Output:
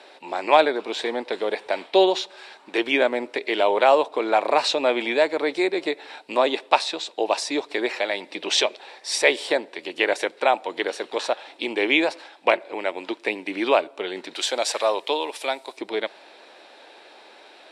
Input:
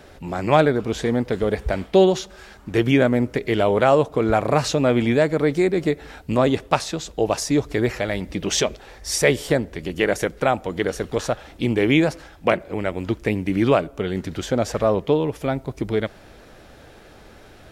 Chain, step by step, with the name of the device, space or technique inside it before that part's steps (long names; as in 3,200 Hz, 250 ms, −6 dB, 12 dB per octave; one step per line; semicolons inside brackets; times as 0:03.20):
phone speaker on a table (loudspeaker in its box 360–9,000 Hz, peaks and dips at 450 Hz −4 dB, 920 Hz +6 dB, 1,300 Hz −4 dB, 2,500 Hz +5 dB, 3,900 Hz +8 dB, 6,500 Hz −8 dB)
0:14.35–0:15.77: RIAA equalisation recording